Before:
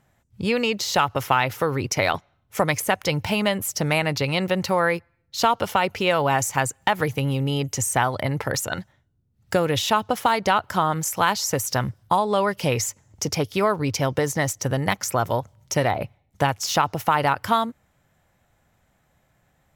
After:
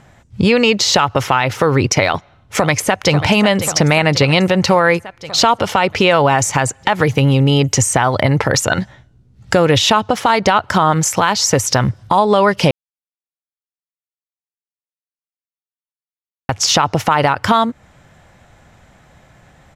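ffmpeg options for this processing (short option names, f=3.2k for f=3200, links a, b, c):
-filter_complex "[0:a]asplit=2[a][b];[b]afade=t=in:st=2.05:d=0.01,afade=t=out:st=3.13:d=0.01,aecho=0:1:540|1080|1620|2160|2700|3240|3780:0.188365|0.122437|0.0795842|0.0517297|0.0336243|0.0218558|0.0142063[c];[a][c]amix=inputs=2:normalize=0,asettb=1/sr,asplit=3[d][e][f];[d]atrim=end=8.804[g];[e]atrim=start=8.8:end=9.54,asetpts=PTS-STARTPTS,afade=t=in:d=0.004:c=qsin,afade=t=out:st=0.736:d=0.004:c=qsin,asplit=2[h][i];[i]adelay=16,volume=-4dB[j];[h][j]amix=inputs=2:normalize=0,atrim=end_sample=32634[k];[f]atrim=start=9.536[l];[g][k]acrossfade=d=0.004:c1=hsin:c2=qsin[m];[m][l]acrossfade=d=0.004:c1=qsin:c2=hsin,asplit=3[n][o][p];[n]atrim=end=12.71,asetpts=PTS-STARTPTS,afade=t=out:st=12.706:d=0.004:c=hsin[q];[o]atrim=start=12.71:end=16.49,asetpts=PTS-STARTPTS,volume=0[r];[p]atrim=start=16.49,asetpts=PTS-STARTPTS,afade=t=in:d=0.004:c=hsin[s];[q][r][s]concat=n=3:v=0:a=1,acompressor=threshold=-31dB:ratio=2,lowpass=7.2k,alimiter=level_in=18.5dB:limit=-1dB:release=50:level=0:latency=1,volume=-1dB"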